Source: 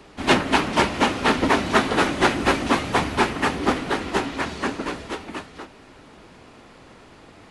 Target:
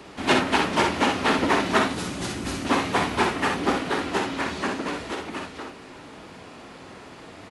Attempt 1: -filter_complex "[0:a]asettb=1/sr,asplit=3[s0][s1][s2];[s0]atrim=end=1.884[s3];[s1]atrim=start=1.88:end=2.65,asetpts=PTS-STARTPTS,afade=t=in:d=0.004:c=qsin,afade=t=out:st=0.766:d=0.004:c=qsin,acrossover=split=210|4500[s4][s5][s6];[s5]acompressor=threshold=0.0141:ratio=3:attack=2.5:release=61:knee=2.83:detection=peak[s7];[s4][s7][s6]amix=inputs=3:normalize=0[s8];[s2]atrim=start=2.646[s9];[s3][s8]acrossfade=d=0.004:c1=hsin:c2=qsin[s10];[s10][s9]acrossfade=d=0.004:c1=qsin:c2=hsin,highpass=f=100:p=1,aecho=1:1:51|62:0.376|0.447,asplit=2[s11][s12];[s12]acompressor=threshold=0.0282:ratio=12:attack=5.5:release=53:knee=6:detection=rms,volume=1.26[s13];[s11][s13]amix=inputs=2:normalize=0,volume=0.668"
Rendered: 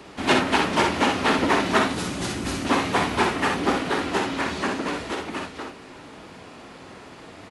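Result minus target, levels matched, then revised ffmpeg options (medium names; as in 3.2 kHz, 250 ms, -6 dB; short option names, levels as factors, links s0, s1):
compression: peak gain reduction -6.5 dB
-filter_complex "[0:a]asettb=1/sr,asplit=3[s0][s1][s2];[s0]atrim=end=1.884[s3];[s1]atrim=start=1.88:end=2.65,asetpts=PTS-STARTPTS,afade=t=in:d=0.004:c=qsin,afade=t=out:st=0.766:d=0.004:c=qsin,acrossover=split=210|4500[s4][s5][s6];[s5]acompressor=threshold=0.0141:ratio=3:attack=2.5:release=61:knee=2.83:detection=peak[s7];[s4][s7][s6]amix=inputs=3:normalize=0[s8];[s2]atrim=start=2.646[s9];[s3][s8]acrossfade=d=0.004:c1=hsin:c2=qsin[s10];[s10][s9]acrossfade=d=0.004:c1=qsin:c2=hsin,highpass=f=100:p=1,aecho=1:1:51|62:0.376|0.447,asplit=2[s11][s12];[s12]acompressor=threshold=0.0126:ratio=12:attack=5.5:release=53:knee=6:detection=rms,volume=1.26[s13];[s11][s13]amix=inputs=2:normalize=0,volume=0.668"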